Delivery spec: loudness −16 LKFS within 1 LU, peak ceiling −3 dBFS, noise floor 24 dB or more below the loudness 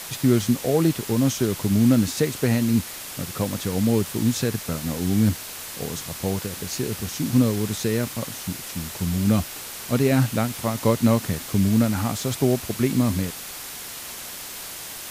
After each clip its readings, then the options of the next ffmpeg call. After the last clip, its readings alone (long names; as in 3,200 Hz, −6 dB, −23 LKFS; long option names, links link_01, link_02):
background noise floor −36 dBFS; target noise floor −48 dBFS; integrated loudness −23.5 LKFS; sample peak −6.0 dBFS; target loudness −16.0 LKFS
→ -af "afftdn=noise_reduction=12:noise_floor=-36"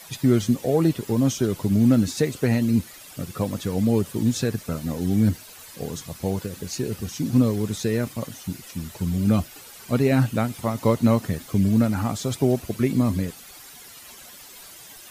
background noise floor −45 dBFS; target noise floor −48 dBFS
→ -af "afftdn=noise_reduction=6:noise_floor=-45"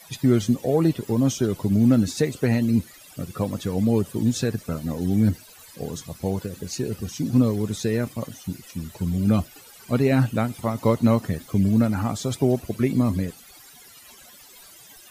background noise floor −48 dBFS; integrated loudness −23.5 LKFS; sample peak −6.5 dBFS; target loudness −16.0 LKFS
→ -af "volume=7.5dB,alimiter=limit=-3dB:level=0:latency=1"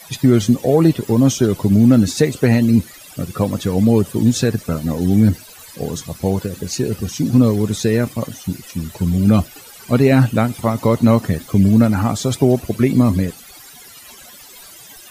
integrated loudness −16.5 LKFS; sample peak −3.0 dBFS; background noise floor −41 dBFS